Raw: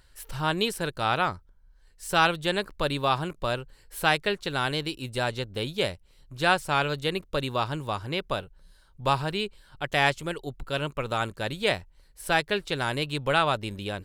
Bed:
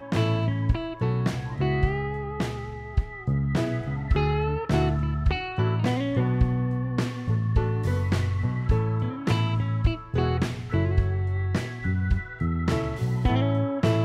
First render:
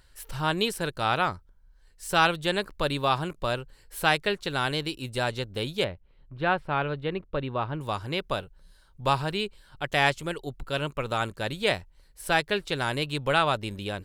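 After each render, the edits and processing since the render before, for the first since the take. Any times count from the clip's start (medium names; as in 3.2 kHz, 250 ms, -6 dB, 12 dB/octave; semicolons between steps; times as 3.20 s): 5.84–7.81 s: distance through air 460 m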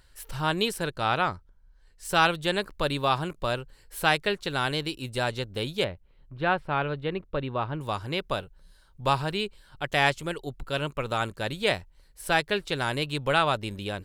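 0.84–2.05 s: treble shelf 8.9 kHz -8.5 dB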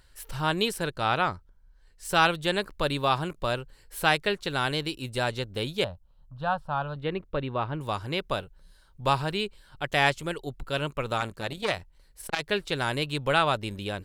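5.84–6.96 s: static phaser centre 890 Hz, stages 4; 11.18–12.43 s: transformer saturation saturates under 2 kHz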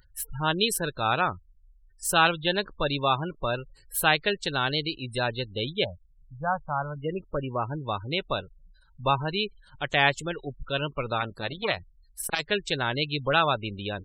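spectral gate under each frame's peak -20 dB strong; treble shelf 4.6 kHz +11.5 dB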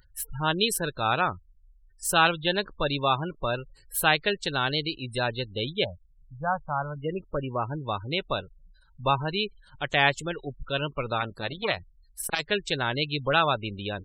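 no audible change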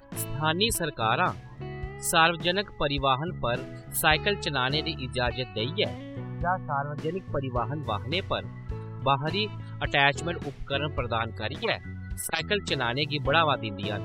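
add bed -13 dB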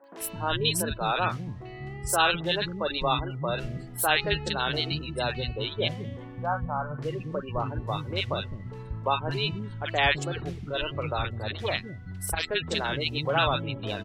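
three bands offset in time mids, highs, lows 40/210 ms, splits 290/1400 Hz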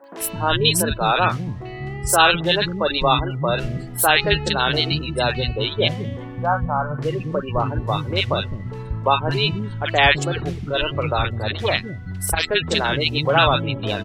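trim +8.5 dB; peak limiter -1 dBFS, peak gain reduction 2.5 dB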